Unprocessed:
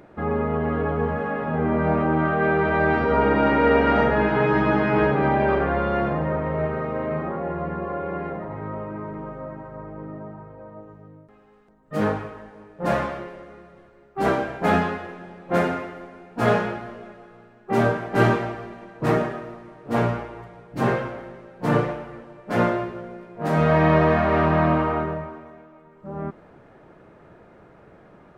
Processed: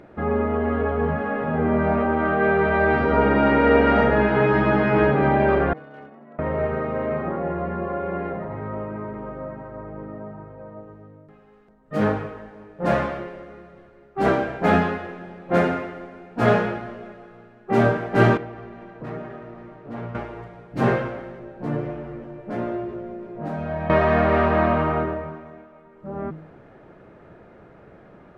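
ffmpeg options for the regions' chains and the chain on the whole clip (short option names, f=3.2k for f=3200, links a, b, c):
-filter_complex "[0:a]asettb=1/sr,asplit=3[a][b][c];[a]atrim=end=5.734[d];[b]atrim=start=5.73:end=6.39,asetpts=PTS-STARTPTS,afade=t=in:d=0.004:c=qsin,afade=t=out:st=0.656:d=0.004:c=qsin,agate=range=-33dB:threshold=-10dB:ratio=3:release=100:detection=peak,aeval=exprs='clip(val(0),-1,0.0112)':c=same,afreqshift=74[e];[c]atrim=start=6.386[f];[d][e]acrossfade=d=0.004:c1=hsin:c2=qsin[g];[g][f]acrossfade=d=0.004:c1=qsin:c2=hsin,asettb=1/sr,asplit=3[h][i][j];[h]atrim=end=18.374[k];[i]atrim=start=18.37:end=20.15,asetpts=PTS-STARTPTS,afade=t=in:d=0.004:c=qsin,afade=t=out:st=1.776:d=0.004:c=qsin,highshelf=f=5.3k:g=-11.5,asplit=2[l][m];[m]adelay=18,volume=-13.5dB[n];[l][n]amix=inputs=2:normalize=0,atrim=end_sample=78498,acompressor=threshold=-38dB:ratio=2.5:attack=3.2:release=140:knee=1:detection=peak[o];[j]atrim=start=20.146[p];[k][o]acrossfade=d=0.004:c1=hsin:c2=qsin[q];[q][p]acrossfade=d=0.004:c1=qsin:c2=hsin,asettb=1/sr,asplit=3[r][s][t];[r]atrim=end=21.394[u];[s]atrim=start=21.39:end=23.9,asetpts=PTS-STARTPTS,afade=t=in:d=0.004:c=qsin,afade=t=out:st=2.506:d=0.004:c=qsin,asplit=2[v][w];[w]adelay=14,volume=-5dB[x];[v][x]amix=inputs=2:normalize=0,atrim=end_sample=110691,acompressor=threshold=-37dB:ratio=2:attack=3.2:release=140:knee=1:detection=peak,tiltshelf=f=910:g=4[y];[t]atrim=start=23.896[z];[u][y]acrossfade=d=0.004:c1=hsin:c2=qsin[aa];[aa][z]acrossfade=d=0.004:c1=qsin:c2=hsin,lowpass=f=3.8k:p=1,equalizer=f=990:t=o:w=0.59:g=-3,bandreject=f=157.5:t=h:w=4,bandreject=f=315:t=h:w=4,bandreject=f=472.5:t=h:w=4,volume=2.5dB"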